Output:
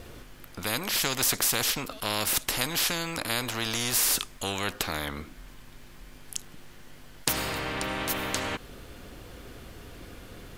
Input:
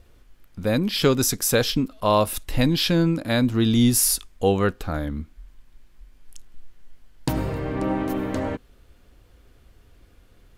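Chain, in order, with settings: spectral compressor 4:1

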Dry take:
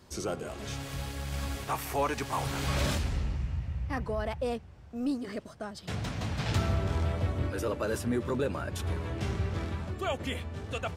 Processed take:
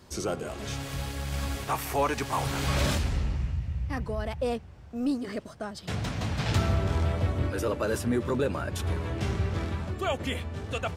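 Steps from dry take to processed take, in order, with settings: 3.51–4.38 bell 910 Hz -4.5 dB 2.9 oct; gain +3 dB

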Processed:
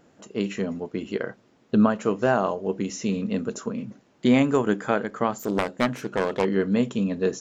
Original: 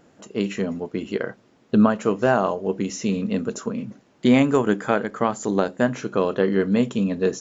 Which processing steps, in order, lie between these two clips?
5.38–6.45 self-modulated delay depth 0.58 ms; gain -2.5 dB

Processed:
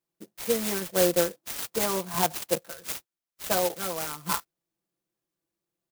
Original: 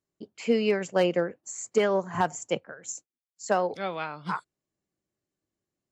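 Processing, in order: low shelf 450 Hz -9 dB; comb 5.9 ms, depth 89%; clock jitter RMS 0.13 ms; gain +1.5 dB

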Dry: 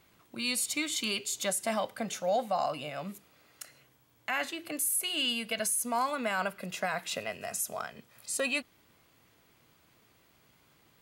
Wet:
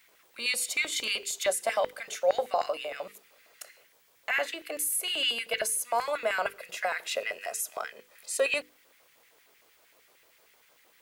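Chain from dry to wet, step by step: LFO high-pass square 6.5 Hz 490–1900 Hz; added noise white -68 dBFS; notches 50/100/150/200/250/300/350/400/450/500 Hz

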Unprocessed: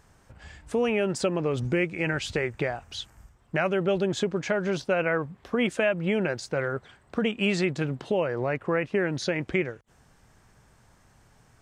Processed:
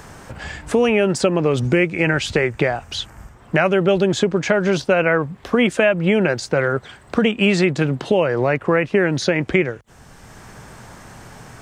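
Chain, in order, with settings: three-band squash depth 40%; gain +9 dB

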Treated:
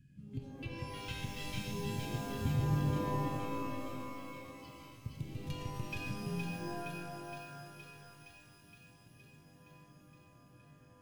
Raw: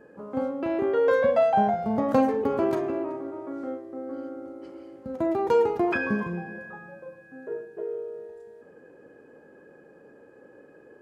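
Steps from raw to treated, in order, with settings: in parallel at -11 dB: wavefolder -22.5 dBFS; on the sum: Chebyshev band-stop 140–2700 Hz, order 3; resonant low shelf 530 Hz +10.5 dB, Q 1.5; spectral noise reduction 7 dB; compressor, threshold -41 dBFS, peak gain reduction 19 dB; 2.38–4.09 tilt shelf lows +8 dB, about 1400 Hz; on a send: thin delay 0.467 s, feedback 72%, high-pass 1900 Hz, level -3 dB; on the sum: shimmer reverb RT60 2.3 s, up +12 st, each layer -2 dB, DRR 4 dB; gain +1.5 dB

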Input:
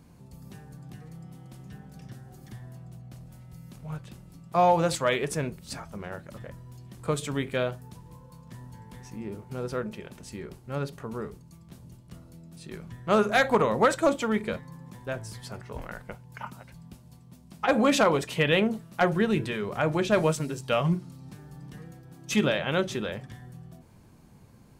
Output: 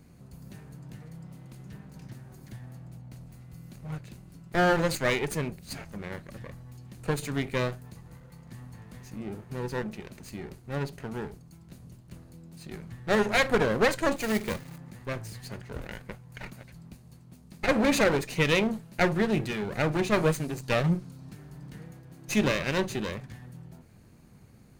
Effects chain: minimum comb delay 0.45 ms; 14.16–14.78 companded quantiser 4-bit

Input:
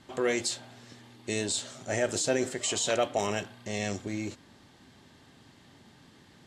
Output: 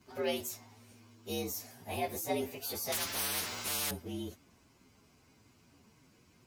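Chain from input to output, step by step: inharmonic rescaling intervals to 116%; 2.92–3.91 spectral compressor 10:1; gain -4 dB

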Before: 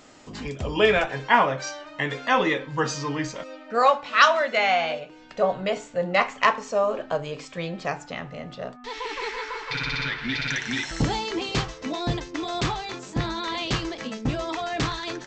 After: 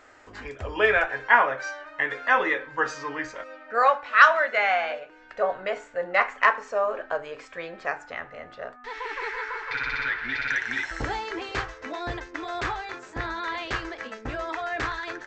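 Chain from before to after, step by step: EQ curve 100 Hz 0 dB, 150 Hz -16 dB, 390 Hz 0 dB, 1100 Hz +3 dB, 1600 Hz +10 dB, 3100 Hz -4 dB, 5200 Hz -6 dB; gain -4 dB

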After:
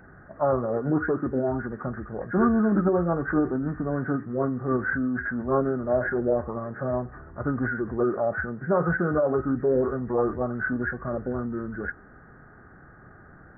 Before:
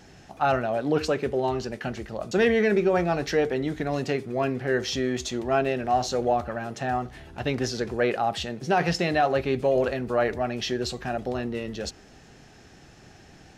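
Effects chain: nonlinear frequency compression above 1400 Hz 4:1; formant shift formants -4 st

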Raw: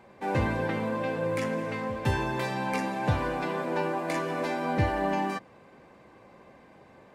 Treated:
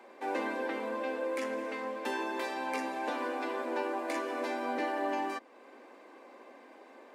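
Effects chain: steep high-pass 240 Hz 72 dB/oct; in parallel at +1 dB: compressor, threshold -46 dBFS, peak gain reduction 19.5 dB; on the sum: gain -5.5 dB

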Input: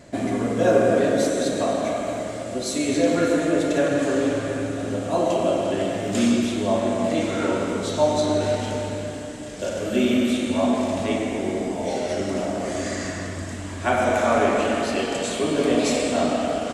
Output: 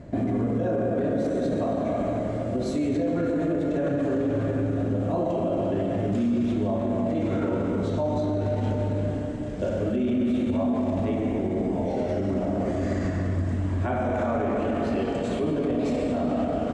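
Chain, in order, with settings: LPF 1100 Hz 6 dB/oct; low shelf 240 Hz +10.5 dB; limiter -18 dBFS, peak gain reduction 13.5 dB

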